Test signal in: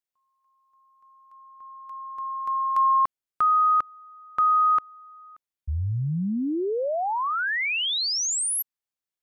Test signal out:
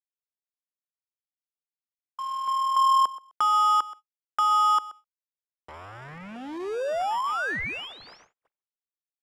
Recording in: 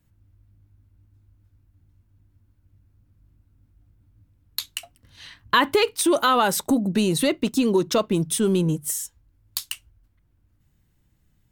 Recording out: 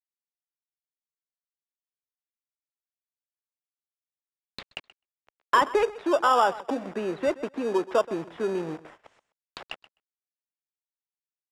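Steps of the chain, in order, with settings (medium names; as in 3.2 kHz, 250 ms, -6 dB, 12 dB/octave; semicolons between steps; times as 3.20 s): send-on-delta sampling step -30 dBFS; on a send: feedback delay 128 ms, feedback 16%, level -18.5 dB; on the sum: low-pass that closes with the level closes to 1.6 kHz, closed at -22.5 dBFS; gate -41 dBFS, range -45 dB; Bessel high-pass 170 Hz; three-band isolator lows -19 dB, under 420 Hz, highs -18 dB, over 2.8 kHz; in parallel at -8.5 dB: sample-rate reducer 2.1 kHz, jitter 0%; on the sum: low-pass 7.8 kHz 12 dB/octave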